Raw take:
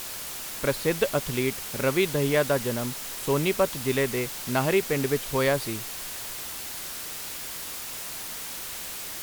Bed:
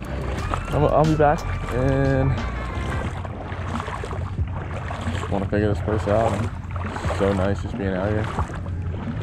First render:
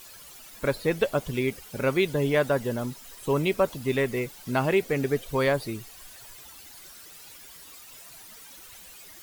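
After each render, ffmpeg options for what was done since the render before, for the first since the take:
-af "afftdn=nr=14:nf=-36"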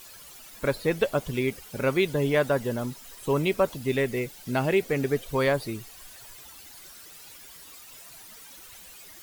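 -filter_complex "[0:a]asettb=1/sr,asplit=3[a][b][c];[a]atrim=end=3.774[d];[b]atrim=start=3.77:end=4.81,asetpts=PTS-STARTPTS,afade=t=in:d=0.004:c=qsin,afade=t=out:st=1.036:d=0.004:c=qsin,equalizer=f=1.1k:w=2.5:g=-5.5[e];[c]atrim=start=4.806[f];[d][e]acrossfade=d=0.004:c1=hsin:c2=qsin[g];[g][f]acrossfade=d=0.004:c1=qsin:c2=hsin"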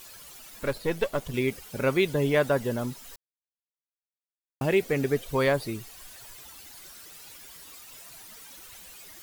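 -filter_complex "[0:a]asettb=1/sr,asplit=3[a][b][c];[a]atrim=end=0.634[d];[b]atrim=start=0.63:end=1.34,asetpts=PTS-STARTPTS,afade=t=in:d=0.004:c=qsin,afade=t=out:st=0.706:d=0.004:c=qsin,aeval=exprs='if(lt(val(0),0),0.447*val(0),val(0))':c=same[e];[c]atrim=start=1.336[f];[d][e]acrossfade=d=0.004:c1=hsin:c2=qsin[g];[g][f]acrossfade=d=0.004:c1=qsin:c2=hsin,asplit=3[h][i][j];[h]atrim=end=3.16,asetpts=PTS-STARTPTS,afade=t=out:st=3.156:d=0.004:c=hsin[k];[i]atrim=start=3.16:end=4.61,asetpts=PTS-STARTPTS,volume=0[l];[j]atrim=start=4.61,asetpts=PTS-STARTPTS,afade=t=in:d=0.004:c=hsin[m];[k][l][m]concat=n=3:v=0:a=1"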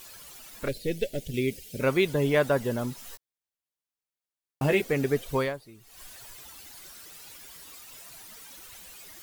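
-filter_complex "[0:a]asettb=1/sr,asplit=3[a][b][c];[a]atrim=end=0.684[d];[b]atrim=start=0.68:end=1.81,asetpts=PTS-STARTPTS,afade=t=in:d=0.004:c=qsin,afade=t=out:st=1.126:d=0.004:c=qsin,asuperstop=centerf=1100:order=4:qfactor=0.61[e];[c]atrim=start=1.806[f];[d][e]acrossfade=d=0.004:c1=hsin:c2=qsin[g];[g][f]acrossfade=d=0.004:c1=qsin:c2=hsin,asettb=1/sr,asplit=3[h][i][j];[h]atrim=end=2.964[k];[i]atrim=start=2.96:end=4.82,asetpts=PTS-STARTPTS,afade=t=in:d=0.004:c=qsin,afade=t=out:st=1.856:d=0.004:c=qsin,asplit=2[l][m];[m]adelay=14,volume=-3.5dB[n];[l][n]amix=inputs=2:normalize=0,atrim=end_sample=82026[o];[j]atrim=start=4.816[p];[k][o]acrossfade=d=0.004:c1=hsin:c2=qsin[q];[q][p]acrossfade=d=0.004:c1=qsin:c2=hsin,asplit=3[r][s][t];[r]atrim=end=5.64,asetpts=PTS-STARTPTS,afade=t=out:st=5.37:d=0.27:c=qua:silence=0.141254[u];[s]atrim=start=5.64:end=5.74,asetpts=PTS-STARTPTS,volume=-17dB[v];[t]atrim=start=5.74,asetpts=PTS-STARTPTS,afade=t=in:d=0.27:c=qua:silence=0.141254[w];[u][v][w]concat=n=3:v=0:a=1"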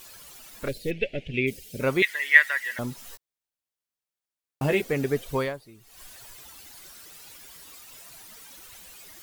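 -filter_complex "[0:a]asplit=3[a][b][c];[a]afade=t=out:st=0.9:d=0.02[d];[b]lowpass=f=2.5k:t=q:w=3.9,afade=t=in:st=0.9:d=0.02,afade=t=out:st=1.46:d=0.02[e];[c]afade=t=in:st=1.46:d=0.02[f];[d][e][f]amix=inputs=3:normalize=0,asettb=1/sr,asplit=3[g][h][i];[g]atrim=end=2.024[j];[h]atrim=start=2.02:end=2.79,asetpts=PTS-STARTPTS,afade=t=in:d=0.004:c=qsin,afade=t=out:st=0.766:d=0.004:c=qsin,highpass=f=1.9k:t=q:w=15[k];[i]atrim=start=2.786[l];[j][k]acrossfade=d=0.004:c1=hsin:c2=qsin[m];[m][l]acrossfade=d=0.004:c1=qsin:c2=hsin"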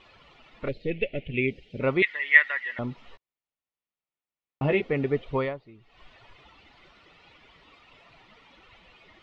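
-af "lowpass=f=3.1k:w=0.5412,lowpass=f=3.1k:w=1.3066,bandreject=f=1.6k:w=6.3"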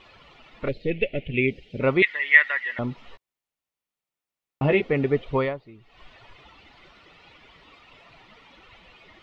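-af "volume=3.5dB,alimiter=limit=-3dB:level=0:latency=1"

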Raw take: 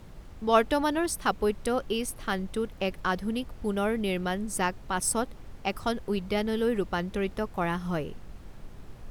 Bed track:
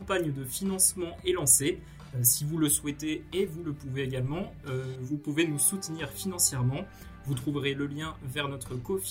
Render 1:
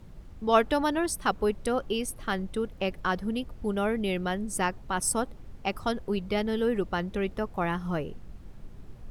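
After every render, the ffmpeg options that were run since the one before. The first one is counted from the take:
-af "afftdn=nr=6:nf=-47"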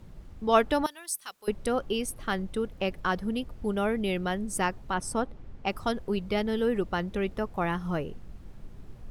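-filter_complex "[0:a]asettb=1/sr,asplit=3[a][b][c];[a]atrim=end=0.864[d];[b]atrim=start=0.86:end=1.48,asetpts=PTS-STARTPTS,afade=t=in:d=0.004:c=qsin,afade=t=out:st=0.616:d=0.004:c=qsin,aderivative[e];[c]atrim=start=1.476[f];[d][e]acrossfade=d=0.004:c1=hsin:c2=qsin[g];[g][f]acrossfade=d=0.004:c1=qsin:c2=hsin,asettb=1/sr,asplit=3[h][i][j];[h]atrim=end=4.944[k];[i]atrim=start=4.94:end=5.67,asetpts=PTS-STARTPTS,afade=t=in:d=0.004:c=qsin,afade=t=out:st=0.726:d=0.004:c=qsin,aemphasis=mode=reproduction:type=50fm[l];[j]atrim=start=5.666[m];[k][l]acrossfade=d=0.004:c1=hsin:c2=qsin[n];[n][m]acrossfade=d=0.004:c1=qsin:c2=hsin"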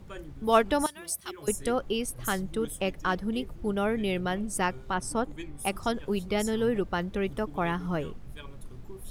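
-filter_complex "[1:a]volume=-15dB[a];[0:a][a]amix=inputs=2:normalize=0"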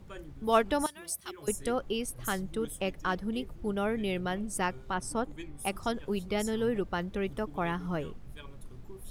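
-af "volume=-3dB"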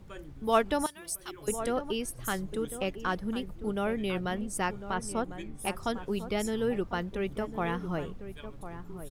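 -filter_complex "[0:a]asplit=2[a][b];[b]adelay=1050,volume=-11dB,highshelf=f=4k:g=-23.6[c];[a][c]amix=inputs=2:normalize=0"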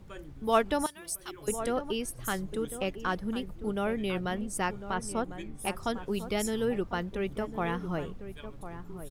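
-filter_complex "[0:a]asettb=1/sr,asplit=3[a][b][c];[a]atrim=end=6.144[d];[b]atrim=start=6.14:end=6.65,asetpts=PTS-STARTPTS,afade=t=in:d=0.004:c=qsin,afade=t=out:st=0.506:d=0.004:c=qsin,highshelf=f=4.6k:g=5.5[e];[c]atrim=start=6.646[f];[d][e]acrossfade=d=0.004:c1=hsin:c2=qsin[g];[g][f]acrossfade=d=0.004:c1=qsin:c2=hsin"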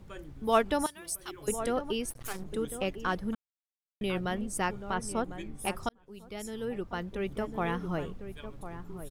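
-filter_complex "[0:a]asettb=1/sr,asplit=3[a][b][c];[a]atrim=end=2.104[d];[b]atrim=start=2.1:end=2.5,asetpts=PTS-STARTPTS,afade=t=in:d=0.004:c=qsin,afade=t=out:st=0.396:d=0.004:c=qsin,aeval=exprs='max(val(0),0)':c=same[e];[c]atrim=start=2.496[f];[d][e]acrossfade=d=0.004:c1=hsin:c2=qsin[g];[g][f]acrossfade=d=0.004:c1=qsin:c2=hsin,asplit=4[h][i][j][k];[h]atrim=end=3.35,asetpts=PTS-STARTPTS,afade=t=out:st=3.346:d=0.004:c=hsin[l];[i]atrim=start=3.35:end=4.01,asetpts=PTS-STARTPTS,volume=0[m];[j]atrim=start=4.01:end=5.89,asetpts=PTS-STARTPTS,afade=t=in:d=0.004:c=hsin,afade=t=out:st=1.876:d=0.004:c=hsin[n];[k]atrim=start=5.89,asetpts=PTS-STARTPTS,afade=t=in:d=1.56[o];[l][m][n][o]concat=n=4:v=0:a=1"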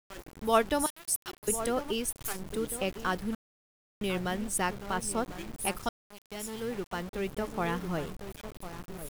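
-af "crystalizer=i=1:c=0,aeval=exprs='val(0)*gte(abs(val(0)),0.00944)':c=same"

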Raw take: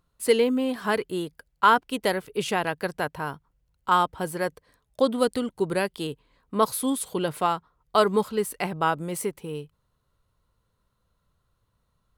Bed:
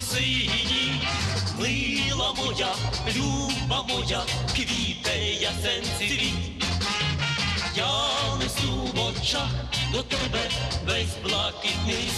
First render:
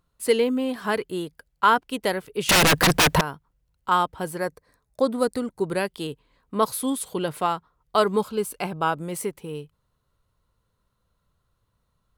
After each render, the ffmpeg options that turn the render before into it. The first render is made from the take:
-filter_complex "[0:a]asettb=1/sr,asplit=3[a][b][c];[a]atrim=end=2.494[d];[b]atrim=start=2.49:end=3.21,asetpts=PTS-STARTPTS,afade=t=in:d=0.004:c=qsin,afade=t=out:st=0.716:d=0.004:c=qsin,aeval=exprs='0.224*sin(PI/2*10*val(0)/0.224)':c=same[e];[c]atrim=start=3.206[f];[d][e]acrossfade=d=0.004:c1=hsin:c2=qsin[g];[g][f]acrossfade=d=0.004:c1=qsin:c2=hsin,asettb=1/sr,asplit=3[h][i][j];[h]atrim=end=4.384[k];[i]atrim=start=4.38:end=5.64,asetpts=PTS-STARTPTS,afade=t=in:d=0.004:c=qsin,afade=t=out:st=1.256:d=0.004:c=qsin,equalizer=f=3.1k:t=o:w=0.37:g=-12.5[l];[j]atrim=start=5.636[m];[k][l]acrossfade=d=0.004:c1=hsin:c2=qsin[n];[n][m]acrossfade=d=0.004:c1=qsin:c2=hsin,asettb=1/sr,asplit=3[o][p][q];[o]atrim=end=8.184[r];[p]atrim=start=8.18:end=8.92,asetpts=PTS-STARTPTS,afade=t=in:d=0.004:c=qsin,afade=t=out:st=0.736:d=0.004:c=qsin,asuperstop=centerf=1900:order=4:qfactor=6.6[s];[q]atrim=start=8.916[t];[r][s]acrossfade=d=0.004:c1=hsin:c2=qsin[u];[u][t]acrossfade=d=0.004:c1=qsin:c2=hsin"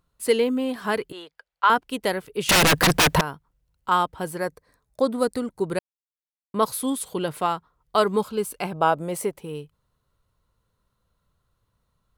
-filter_complex "[0:a]asettb=1/sr,asplit=3[a][b][c];[a]atrim=end=1.124[d];[b]atrim=start=1.12:end=1.7,asetpts=PTS-STARTPTS,afade=t=in:d=0.004:c=qsin,afade=t=out:st=0.576:d=0.004:c=qsin,acrossover=split=520 5200:gain=0.0708 1 0.126[e][f][g];[e][f][g]amix=inputs=3:normalize=0[h];[c]atrim=start=1.696[i];[d][h]acrossfade=d=0.004:c1=hsin:c2=qsin[j];[j][i]acrossfade=d=0.004:c1=qsin:c2=hsin,asettb=1/sr,asplit=3[k][l][m];[k]atrim=end=8.744[n];[l]atrim=start=8.74:end=9.41,asetpts=PTS-STARTPTS,afade=t=in:d=0.004:c=qsin,afade=t=out:st=0.666:d=0.004:c=qsin,equalizer=f=640:w=1.5:g=8[o];[m]atrim=start=9.406[p];[n][o]acrossfade=d=0.004:c1=hsin:c2=qsin[q];[q][p]acrossfade=d=0.004:c1=qsin:c2=hsin,asplit=3[r][s][t];[r]atrim=end=5.79,asetpts=PTS-STARTPTS,afade=t=out:st=5.786:d=0.004:c=hsin[u];[s]atrim=start=5.79:end=6.54,asetpts=PTS-STARTPTS,volume=0[v];[t]atrim=start=6.54,asetpts=PTS-STARTPTS,afade=t=in:d=0.004:c=hsin[w];[u][v][w]concat=n=3:v=0:a=1"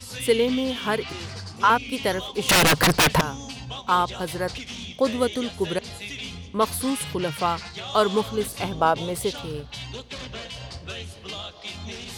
-filter_complex "[1:a]volume=-9.5dB[a];[0:a][a]amix=inputs=2:normalize=0"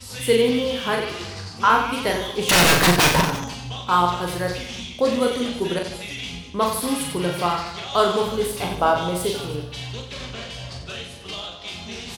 -filter_complex "[0:a]asplit=2[a][b];[b]adelay=17,volume=-11.5dB[c];[a][c]amix=inputs=2:normalize=0,aecho=1:1:40|90|152.5|230.6|328.3:0.631|0.398|0.251|0.158|0.1"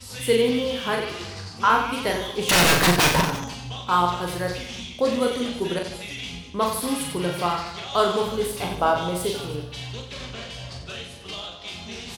-af "volume=-2dB"

